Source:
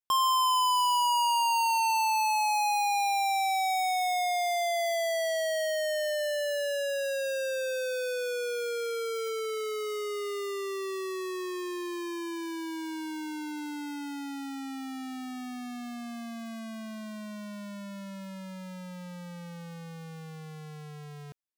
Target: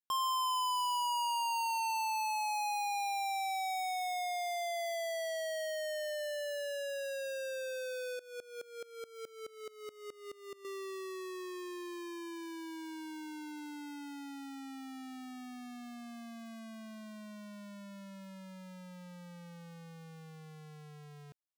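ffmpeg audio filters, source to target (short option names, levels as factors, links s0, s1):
-filter_complex "[0:a]asettb=1/sr,asplit=3[s0][s1][s2];[s0]atrim=end=8.194[s3];[s1]atrim=start=8.19:end=10.65,asetpts=PTS-STARTPTS,afade=t=in:d=0.004:c=qsin,afade=t=out:st=2.456:d=0.004:c=qsin,aeval=exprs='val(0)*pow(10,-21*if(lt(mod(-4.7*n/s,1),2*abs(-4.7)/1000),1-mod(-4.7*n/s,1)/(2*abs(-4.7)/1000),(mod(-4.7*n/s,1)-2*abs(-4.7)/1000)/(1-2*abs(-4.7)/1000))/20)':c=same[s4];[s2]atrim=start=10.646[s5];[s3][s4]acrossfade=d=0.004:c1=hsin:c2=qsin[s6];[s6][s5]acrossfade=d=0.004:c1=qsin:c2=hsin,volume=0.398"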